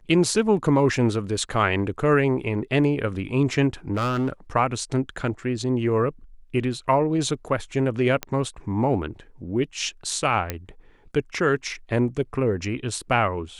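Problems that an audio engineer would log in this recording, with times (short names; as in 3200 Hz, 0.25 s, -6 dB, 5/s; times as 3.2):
3.94–4.3 clipped -20 dBFS
8.23 pop -11 dBFS
10.5 pop -10 dBFS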